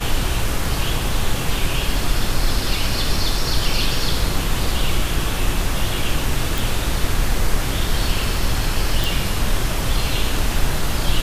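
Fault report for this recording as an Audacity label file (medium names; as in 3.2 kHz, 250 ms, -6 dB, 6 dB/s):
6.580000	6.580000	pop
9.040000	9.040000	pop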